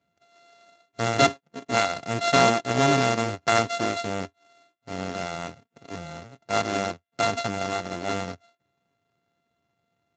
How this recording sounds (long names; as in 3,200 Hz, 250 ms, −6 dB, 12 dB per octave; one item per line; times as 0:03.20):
a buzz of ramps at a fixed pitch in blocks of 64 samples
Speex